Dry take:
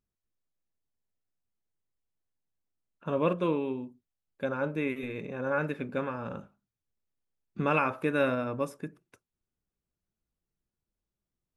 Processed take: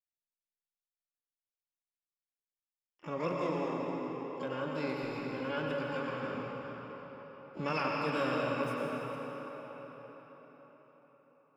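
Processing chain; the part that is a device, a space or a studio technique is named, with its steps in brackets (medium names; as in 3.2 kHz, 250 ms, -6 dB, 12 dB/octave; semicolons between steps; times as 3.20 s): gate with hold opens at -51 dBFS; shimmer-style reverb (harmony voices +12 st -8 dB; reverberation RT60 5.1 s, pre-delay 90 ms, DRR -2 dB); trim -8.5 dB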